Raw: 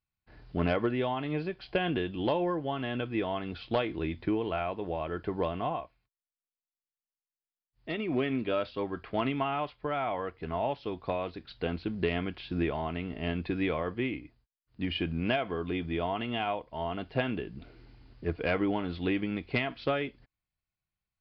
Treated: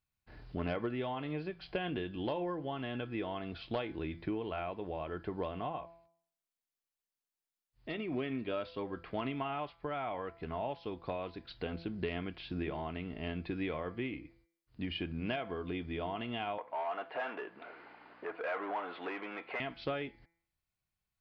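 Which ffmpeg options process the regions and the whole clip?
ffmpeg -i in.wav -filter_complex "[0:a]asettb=1/sr,asplit=3[link_01][link_02][link_03];[link_01]atrim=end=16.584[link_04];[link_02]atrim=start=16.58:end=19.6,asetpts=PTS-STARTPTS,afade=type=in:duration=0.004:curve=qsin,afade=type=out:start_time=3.016:duration=0.004:curve=qsin,asplit=2[link_05][link_06];[link_06]highpass=frequency=720:poles=1,volume=24dB,asoftclip=type=tanh:threshold=-16.5dB[link_07];[link_05][link_07]amix=inputs=2:normalize=0,lowpass=frequency=1300:poles=1,volume=-6dB,aeval=exprs='val(0)+0.00794*(sin(2*PI*60*n/s)+sin(2*PI*2*60*n/s)/2+sin(2*PI*3*60*n/s)/3+sin(2*PI*4*60*n/s)/4+sin(2*PI*5*60*n/s)/5)':channel_layout=same,highpass=680,lowpass=2000[link_08];[link_03]atrim=start=19.596[link_09];[link_04][link_08]acrossfade=duration=0.004:curve1=hsin:curve2=qsin[link_10];[link_10][link_09]acrossfade=duration=0.004:curve1=qsin:curve2=hsin,bandreject=frequency=167.7:width_type=h:width=4,bandreject=frequency=335.4:width_type=h:width=4,bandreject=frequency=503.1:width_type=h:width=4,bandreject=frequency=670.8:width_type=h:width=4,bandreject=frequency=838.5:width_type=h:width=4,bandreject=frequency=1006.2:width_type=h:width=4,bandreject=frequency=1173.9:width_type=h:width=4,bandreject=frequency=1341.6:width_type=h:width=4,bandreject=frequency=1509.3:width_type=h:width=4,bandreject=frequency=1677:width_type=h:width=4,bandreject=frequency=1844.7:width_type=h:width=4,bandreject=frequency=2012.4:width_type=h:width=4,bandreject=frequency=2180.1:width_type=h:width=4,bandreject=frequency=2347.8:width_type=h:width=4,acompressor=threshold=-48dB:ratio=1.5,volume=1dB" out.wav

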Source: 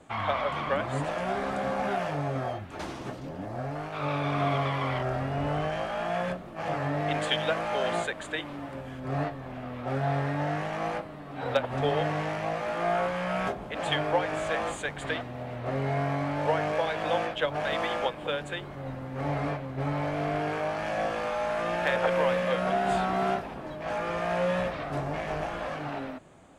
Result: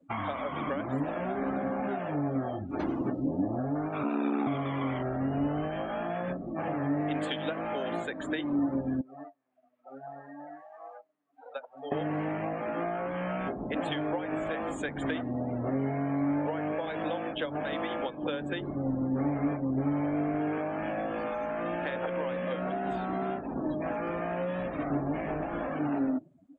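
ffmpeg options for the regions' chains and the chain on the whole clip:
ffmpeg -i in.wav -filter_complex "[0:a]asettb=1/sr,asplit=3[link_01][link_02][link_03];[link_01]atrim=end=4.034[link_04];[link_02]atrim=start=4.03:end=4.47,asetpts=PTS-STARTPTS,afade=type=in:duration=0.004:curve=qsin,afade=type=out:start_time=0.436:duration=0.004:curve=qsin,afreqshift=110,aeval=exprs='val(0)*sin(2*PI*33*n/s)':channel_layout=same[link_05];[link_03]atrim=start=4.466[link_06];[link_04][link_05]acrossfade=duration=0.004:curve1=hsin:curve2=qsin[link_07];[link_07][link_06]acrossfade=duration=0.004:curve1=qsin:curve2=hsin,asettb=1/sr,asplit=3[link_08][link_09][link_10];[link_08]atrim=end=9.014[link_11];[link_09]atrim=start=9.01:end=11.92,asetpts=PTS-STARTPTS,afade=type=in:duration=0.004:curve=qsin,afade=type=out:start_time=2.906:duration=0.004:curve=qsin,bandpass=frequency=5500:width_type=q:width=0.61,equalizer=frequency=4600:width=0.53:gain=-13.5[link_12];[link_10]atrim=start=11.916[link_13];[link_11][link_12]acrossfade=duration=0.004:curve1=hsin:curve2=qsin[link_14];[link_14][link_13]acrossfade=duration=0.004:curve1=qsin:curve2=hsin,afftdn=noise_reduction=30:noise_floor=-41,acompressor=threshold=-35dB:ratio=6,equalizer=frequency=280:width_type=o:width=0.81:gain=12.5,volume=2.5dB" out.wav

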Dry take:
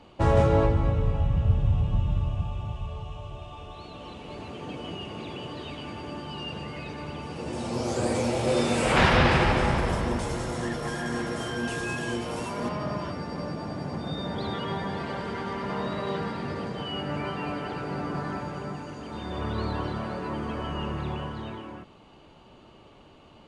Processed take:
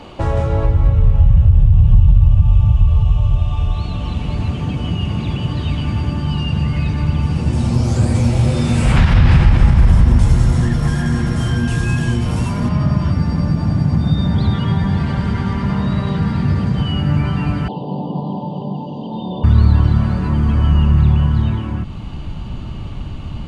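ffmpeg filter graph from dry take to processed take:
ffmpeg -i in.wav -filter_complex "[0:a]asettb=1/sr,asplit=3[link_01][link_02][link_03];[link_01]atrim=end=17.684[link_04];[link_02]atrim=start=17.68:end=19.44,asetpts=PTS-STARTPTS,afade=type=in:duration=0.004:curve=qsin,afade=type=out:start_time=1.756:duration=0.004:curve=qsin,asuperstop=centerf=1800:order=12:qfactor=0.83,highpass=frequency=190:width=0.5412,highpass=frequency=190:width=1.3066,equalizer=frequency=280:width_type=q:width=4:gain=-4,equalizer=frequency=510:width_type=q:width=4:gain=8,equalizer=frequency=860:width_type=q:width=4:gain=6,equalizer=frequency=1400:width_type=q:width=4:gain=-10,equalizer=frequency=2800:width_type=q:width=4:gain=9,lowpass=frequency=3400:width=0.5412,lowpass=frequency=3400:width=1.3066[link_05];[link_03]atrim=start=19.436[link_06];[link_04][link_05]acrossfade=duration=0.004:curve1=hsin:curve2=qsin[link_07];[link_07][link_06]acrossfade=duration=0.004:curve1=qsin:curve2=hsin,acompressor=threshold=-45dB:ratio=2,asubboost=boost=12:cutoff=130,alimiter=level_in=16.5dB:limit=-1dB:release=50:level=0:latency=1,volume=-1dB" out.wav

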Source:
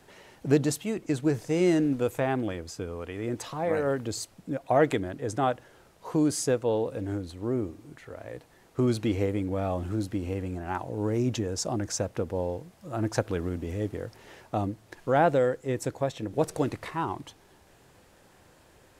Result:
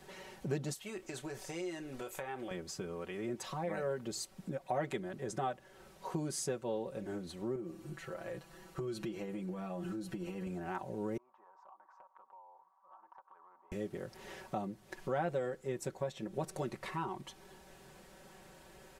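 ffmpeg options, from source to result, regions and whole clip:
ffmpeg -i in.wav -filter_complex "[0:a]asettb=1/sr,asplit=3[link_01][link_02][link_03];[link_01]atrim=end=0.734[link_04];[link_02]atrim=start=0.73:end=2.51,asetpts=PTS-STARTPTS,afade=type=in:duration=0.004:curve=qsin,afade=type=out:start_time=1.776:duration=0.004:curve=qsin,equalizer=frequency=170:width_type=o:width=1.9:gain=-14.5,acompressor=threshold=-34dB:ratio=3:attack=3.2:release=140:knee=1:detection=peak,asplit=2[link_05][link_06];[link_06]adelay=30,volume=-12.5dB[link_07];[link_05][link_07]amix=inputs=2:normalize=0,atrim=end_sample=78498[link_08];[link_03]atrim=start=2.506[link_09];[link_04][link_08]acrossfade=duration=0.004:curve1=hsin:curve2=qsin[link_10];[link_10][link_09]acrossfade=duration=0.004:curve1=qsin:curve2=hsin,asettb=1/sr,asplit=3[link_11][link_12][link_13];[link_11]atrim=end=7.554[link_14];[link_12]atrim=start=7.55:end=10.47,asetpts=PTS-STARTPTS,afade=type=in:duration=0.004:curve=qsin,afade=type=out:start_time=2.916:duration=0.004:curve=qsin,aecho=1:1:6:0.75,atrim=end_sample=128772,acompressor=threshold=-31dB:ratio=4:attack=3.2:release=140:knee=1:detection=peak[link_15];[link_13]atrim=start=10.466[link_16];[link_14][link_15]acrossfade=duration=0.004:curve1=hsin:curve2=qsin[link_17];[link_17][link_16]acrossfade=duration=0.004:curve1=qsin:curve2=hsin,asettb=1/sr,asplit=3[link_18][link_19][link_20];[link_18]atrim=end=11.174[link_21];[link_19]atrim=start=11.17:end=13.72,asetpts=PTS-STARTPTS,afade=type=in:duration=0.004:curve=qsin,afade=type=out:start_time=2.546:duration=0.004:curve=qsin,asuperpass=centerf=1000:order=4:qfactor=3.6,acompressor=threshold=-55dB:ratio=5:attack=3.2:release=140:knee=1:detection=peak[link_22];[link_20]atrim=start=13.716[link_23];[link_21][link_22]acrossfade=duration=0.004:curve1=hsin:curve2=qsin[link_24];[link_24][link_23]acrossfade=duration=0.004:curve1=qsin:curve2=hsin,aecho=1:1:5.3:0.85,acompressor=threshold=-41dB:ratio=2,volume=-1.5dB" out.wav

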